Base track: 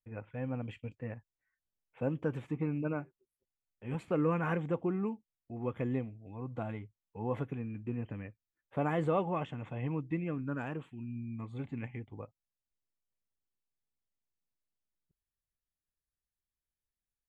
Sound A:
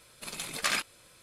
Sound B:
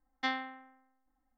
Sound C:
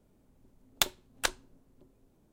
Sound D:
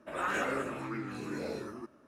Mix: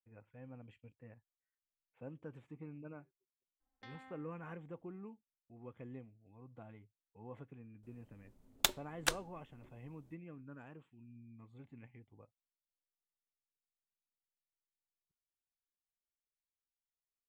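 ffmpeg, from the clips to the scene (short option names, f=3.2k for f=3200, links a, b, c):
-filter_complex "[0:a]volume=-15.5dB[a];[2:a]acompressor=threshold=-42dB:ratio=6:attack=3.2:release=140:knee=1:detection=peak,atrim=end=1.37,asetpts=PTS-STARTPTS,volume=-10.5dB,afade=t=in:d=0.004:c=hsin,afade=t=out:st=1.366:d=0.004:c=hsin,adelay=3600[b];[3:a]atrim=end=2.32,asetpts=PTS-STARTPTS,volume=-3.5dB,afade=t=in:d=0.004:c=hsin,afade=t=out:st=2.316:d=0.004:c=hsin,adelay=7830[c];[a][b][c]amix=inputs=3:normalize=0"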